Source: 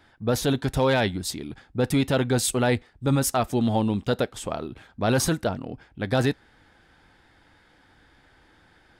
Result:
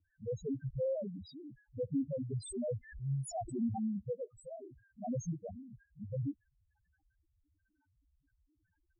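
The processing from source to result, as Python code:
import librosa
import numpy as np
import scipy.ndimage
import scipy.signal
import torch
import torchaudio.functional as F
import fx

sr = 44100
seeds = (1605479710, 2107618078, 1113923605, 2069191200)

y = fx.spec_topn(x, sr, count=1)
y = fx.pre_swell(y, sr, db_per_s=100.0, at=(2.36, 3.78))
y = y * librosa.db_to_amplitude(-5.0)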